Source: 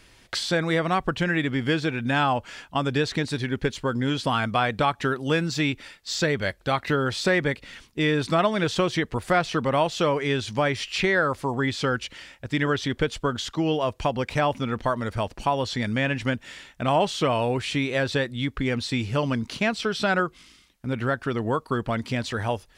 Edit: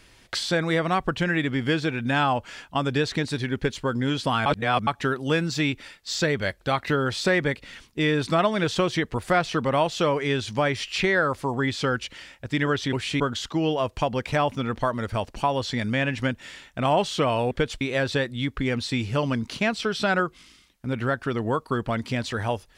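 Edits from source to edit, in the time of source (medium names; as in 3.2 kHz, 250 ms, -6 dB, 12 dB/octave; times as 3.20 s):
4.46–4.87 s: reverse
12.93–13.23 s: swap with 17.54–17.81 s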